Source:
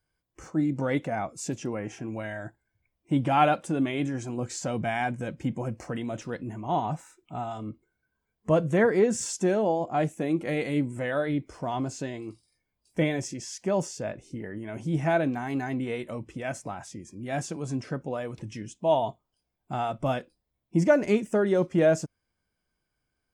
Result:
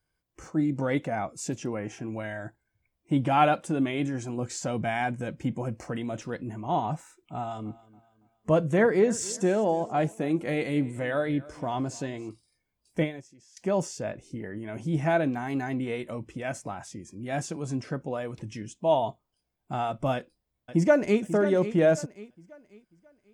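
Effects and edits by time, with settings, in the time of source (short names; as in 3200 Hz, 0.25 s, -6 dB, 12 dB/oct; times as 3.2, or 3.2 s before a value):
7.37–12.29 feedback echo 0.28 s, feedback 37%, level -20.5 dB
12.99–13.57 upward expander 2.5:1, over -34 dBFS
20.14–21.22 echo throw 0.54 s, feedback 35%, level -11.5 dB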